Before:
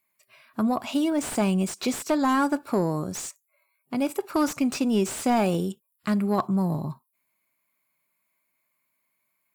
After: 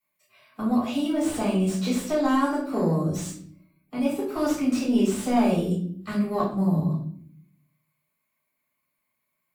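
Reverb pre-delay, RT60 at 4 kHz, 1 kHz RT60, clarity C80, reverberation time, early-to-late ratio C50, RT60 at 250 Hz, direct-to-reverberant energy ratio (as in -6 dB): 3 ms, 0.45 s, 0.50 s, 8.5 dB, 0.60 s, 4.5 dB, 1.0 s, -8.0 dB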